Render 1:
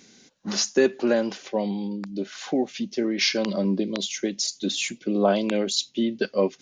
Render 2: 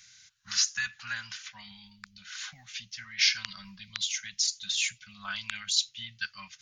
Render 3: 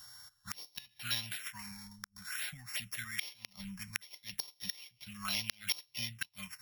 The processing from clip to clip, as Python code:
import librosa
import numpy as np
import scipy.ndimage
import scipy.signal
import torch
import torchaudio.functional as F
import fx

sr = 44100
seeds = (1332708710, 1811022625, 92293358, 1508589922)

y1 = scipy.signal.sosfilt(scipy.signal.ellip(3, 1.0, 80, [110.0, 1400.0], 'bandstop', fs=sr, output='sos'), x)
y2 = np.r_[np.sort(y1[:len(y1) // 8 * 8].reshape(-1, 8), axis=1).ravel(), y1[len(y1) // 8 * 8:]]
y2 = fx.env_phaser(y2, sr, low_hz=380.0, high_hz=1500.0, full_db=-33.5)
y2 = fx.gate_flip(y2, sr, shuts_db=-24.0, range_db=-25)
y2 = F.gain(torch.from_numpy(y2), 5.0).numpy()